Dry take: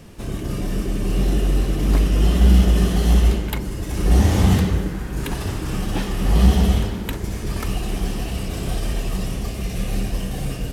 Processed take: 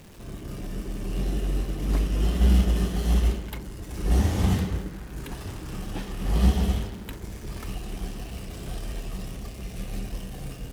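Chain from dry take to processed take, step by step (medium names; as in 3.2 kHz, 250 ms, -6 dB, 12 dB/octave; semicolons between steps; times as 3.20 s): jump at every zero crossing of -29.5 dBFS; upward expansion 1.5:1, over -28 dBFS; trim -5.5 dB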